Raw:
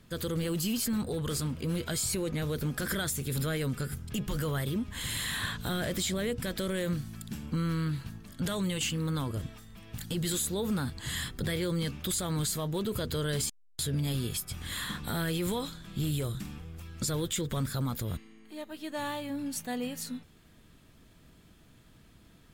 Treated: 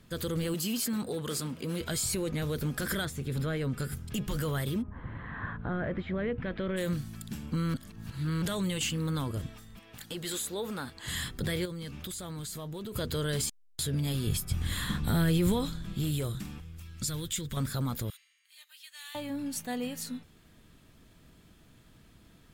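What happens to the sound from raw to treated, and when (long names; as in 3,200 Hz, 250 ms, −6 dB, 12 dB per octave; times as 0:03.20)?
0:00.54–0:01.81: high-pass filter 180 Hz
0:03.05–0:03.78: low-pass filter 2,200 Hz 6 dB per octave
0:04.81–0:06.76: low-pass filter 1,200 Hz → 2,900 Hz 24 dB per octave
0:07.74–0:08.42: reverse
0:09.79–0:11.08: bass and treble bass −13 dB, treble −4 dB
0:11.65–0:12.96: downward compressor, threshold −36 dBFS
0:14.27–0:15.94: low-shelf EQ 230 Hz +11.5 dB
0:16.60–0:17.57: parametric band 570 Hz −11 dB 2.4 octaves
0:18.10–0:19.15: Bessel high-pass filter 2,700 Hz, order 4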